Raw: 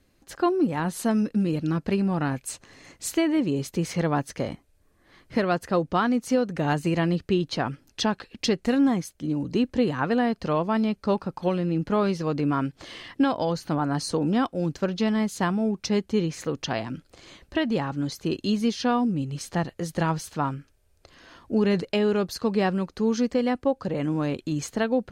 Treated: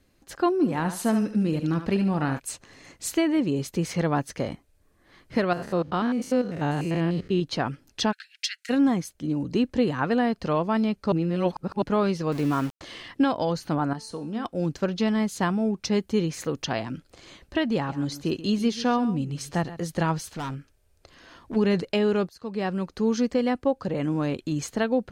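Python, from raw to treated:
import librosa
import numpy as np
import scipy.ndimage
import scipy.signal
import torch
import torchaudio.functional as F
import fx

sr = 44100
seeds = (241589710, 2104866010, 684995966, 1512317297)

y = fx.echo_thinned(x, sr, ms=73, feedback_pct=32, hz=420.0, wet_db=-7.5, at=(0.61, 2.38), fade=0.02)
y = fx.spec_steps(y, sr, hold_ms=100, at=(5.53, 7.42))
y = fx.steep_highpass(y, sr, hz=1400.0, slope=96, at=(8.11, 8.69), fade=0.02)
y = fx.sample_gate(y, sr, floor_db=-34.5, at=(12.32, 12.81))
y = fx.comb_fb(y, sr, f0_hz=220.0, decay_s=0.51, harmonics='all', damping=0.0, mix_pct=70, at=(13.93, 14.45))
y = fx.high_shelf(y, sr, hz=11000.0, db=9.5, at=(16.0, 16.65))
y = fx.echo_single(y, sr, ms=134, db=-15.0, at=(17.75, 19.79))
y = fx.clip_hard(y, sr, threshold_db=-29.0, at=(20.32, 21.55), fade=0.02)
y = fx.edit(y, sr, fx.reverse_span(start_s=11.12, length_s=0.7),
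    fx.fade_in_from(start_s=22.29, length_s=0.63, floor_db=-22.5), tone=tone)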